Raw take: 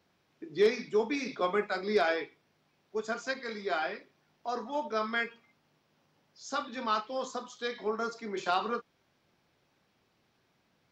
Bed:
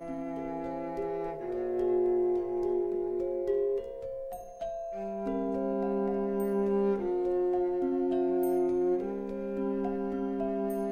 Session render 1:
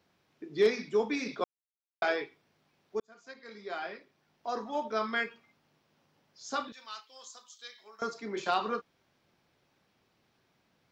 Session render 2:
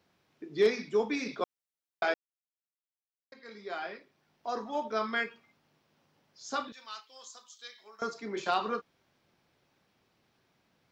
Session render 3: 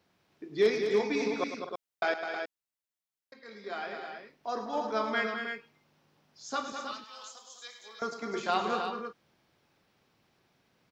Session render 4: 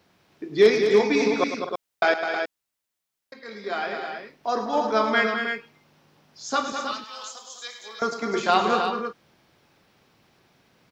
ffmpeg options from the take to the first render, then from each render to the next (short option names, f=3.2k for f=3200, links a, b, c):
-filter_complex "[0:a]asettb=1/sr,asplit=3[a][b][c];[a]atrim=end=6.724[d];[b]atrim=start=6.72:end=8.02,asetpts=PTS-STARTPTS,afade=t=in:d=0.004:c=qsin,afade=t=out:st=1.296:d=0.004:c=qsin,aderivative[e];[c]atrim=start=8.016[f];[d][e]acrossfade=d=0.004:c1=hsin:c2=qsin[g];[g][f]acrossfade=d=0.004:c1=qsin:c2=hsin,asplit=4[h][i][j][k];[h]atrim=end=1.44,asetpts=PTS-STARTPTS,afade=t=out:st=1.436:d=0.004:c=hsin[l];[i]atrim=start=1.44:end=2.02,asetpts=PTS-STARTPTS,volume=0[m];[j]atrim=start=2.02:end=3,asetpts=PTS-STARTPTS,afade=t=in:d=0.004:c=hsin,afade=t=out:st=0.976:d=0.004:c=hsin[n];[k]atrim=start=3,asetpts=PTS-STARTPTS,afade=t=in:d=1.54[o];[l][m][n][o]concat=n=4:v=0:a=1"
-filter_complex "[0:a]asplit=3[a][b][c];[a]atrim=end=2.14,asetpts=PTS-STARTPTS,afade=t=out:st=2.136:d=0.004:c=hsin[d];[b]atrim=start=2.14:end=3.32,asetpts=PTS-STARTPTS,volume=0[e];[c]atrim=start=3.32,asetpts=PTS-STARTPTS,afade=t=in:d=0.004:c=hsin[f];[d][e][f]concat=n=3:v=0:a=1"
-af "aecho=1:1:105|206|253|317:0.282|0.422|0.2|0.447"
-af "volume=9dB"